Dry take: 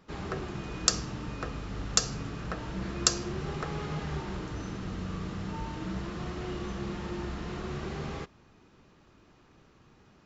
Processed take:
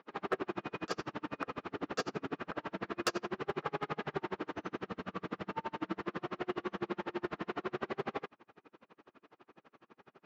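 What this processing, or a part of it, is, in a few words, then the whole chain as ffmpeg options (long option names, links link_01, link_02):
helicopter radio: -filter_complex "[0:a]highpass=320,lowpass=2500,aeval=exprs='val(0)*pow(10,-37*(0.5-0.5*cos(2*PI*12*n/s))/20)':channel_layout=same,asoftclip=type=hard:threshold=-32.5dB,asettb=1/sr,asplit=3[link_01][link_02][link_03];[link_01]atrim=end=1.694[link_04];[link_02]atrim=start=1.69:end=2.34,asetpts=PTS-STARTPTS,afade=type=in:duration=0.004:curve=qsin,afade=type=out:start_time=0.646:duration=0.004:curve=qsin,equalizer=frequency=330:width=1.5:gain=6[link_05];[link_03]atrim=start=2.336[link_06];[link_04][link_05]acrossfade=duration=0.004:curve1=hsin:curve2=qsin[link_07];[link_07][link_06]acrossfade=duration=0.004:curve1=qsin:curve2=hsin,volume=8.5dB"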